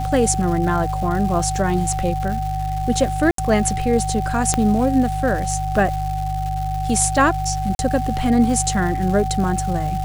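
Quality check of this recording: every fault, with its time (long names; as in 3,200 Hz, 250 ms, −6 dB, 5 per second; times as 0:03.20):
surface crackle 470 per second −28 dBFS
mains hum 50 Hz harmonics 3 −25 dBFS
whistle 760 Hz −24 dBFS
0:03.31–0:03.38: drop-out 73 ms
0:04.54: click −4 dBFS
0:07.75–0:07.79: drop-out 41 ms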